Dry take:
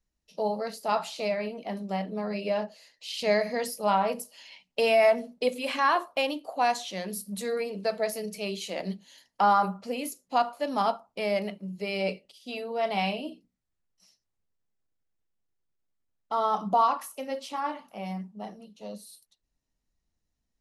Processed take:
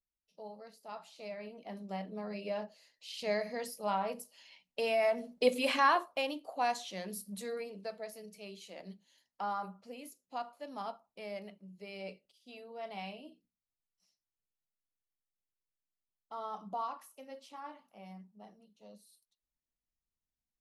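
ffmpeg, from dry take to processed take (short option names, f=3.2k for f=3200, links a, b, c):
-af "volume=1dB,afade=t=in:st=1.06:d=0.84:silence=0.316228,afade=t=in:st=5.12:d=0.48:silence=0.316228,afade=t=out:st=5.6:d=0.47:silence=0.398107,afade=t=out:st=7.21:d=0.81:silence=0.398107"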